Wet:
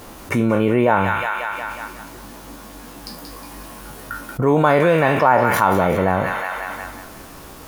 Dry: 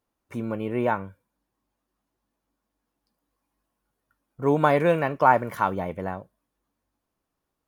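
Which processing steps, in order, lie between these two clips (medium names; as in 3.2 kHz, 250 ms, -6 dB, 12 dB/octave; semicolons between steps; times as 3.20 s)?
spectral sustain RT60 0.36 s; on a send: feedback echo behind a high-pass 181 ms, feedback 38%, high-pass 1.6 kHz, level -6.5 dB; on the sum: level flattener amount 70%; trim +1 dB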